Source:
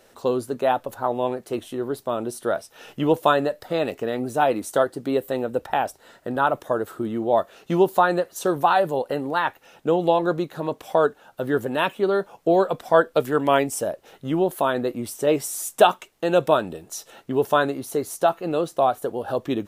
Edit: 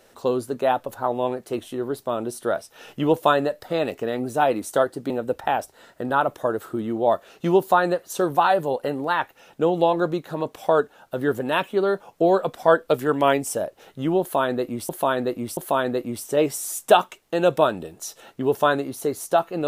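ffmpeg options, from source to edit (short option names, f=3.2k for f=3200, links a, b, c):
-filter_complex "[0:a]asplit=4[a][b][c][d];[a]atrim=end=5.102[e];[b]atrim=start=5.358:end=15.152[f];[c]atrim=start=14.468:end=15.152[g];[d]atrim=start=14.468[h];[e][f]acrossfade=d=0.004:c1=hsin:c2=hsin[i];[i][g]acrossfade=d=0.004:c1=hsin:c2=hsin[j];[j][h]acrossfade=d=0.004:c1=hsin:c2=hsin"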